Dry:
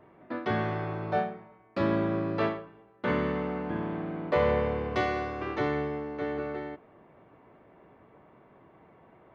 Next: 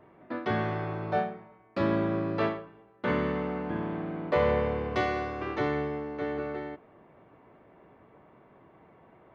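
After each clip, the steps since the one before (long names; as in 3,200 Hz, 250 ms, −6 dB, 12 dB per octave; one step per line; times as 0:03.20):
no processing that can be heard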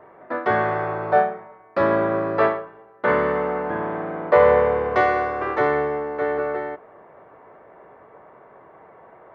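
flat-topped bell 900 Hz +11.5 dB 2.6 octaves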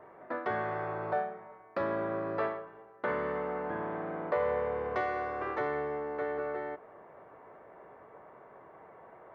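downward compressor 2 to 1, threshold −30 dBFS, peak gain reduction 11 dB
level −5.5 dB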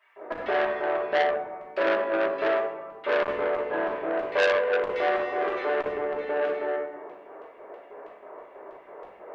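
auto-filter high-pass square 3.1 Hz 440–2,800 Hz
convolution reverb RT60 1.2 s, pre-delay 3 ms, DRR −6.5 dB
saturating transformer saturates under 2,200 Hz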